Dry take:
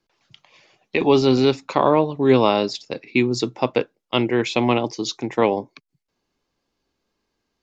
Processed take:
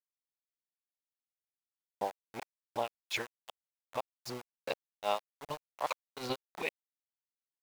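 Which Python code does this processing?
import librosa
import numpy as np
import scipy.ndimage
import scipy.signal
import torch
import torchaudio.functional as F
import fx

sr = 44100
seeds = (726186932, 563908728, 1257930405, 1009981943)

y = x[::-1].copy()
y = fx.level_steps(y, sr, step_db=15)
y = fx.granulator(y, sr, seeds[0], grain_ms=214.0, per_s=2.6, spray_ms=12.0, spread_st=0)
y = np.where(np.abs(y) >= 10.0 ** (-40.5 / 20.0), y, 0.0)
y = fx.low_shelf_res(y, sr, hz=460.0, db=-11.0, q=1.5)
y = F.gain(torch.from_numpy(y), 1.0).numpy()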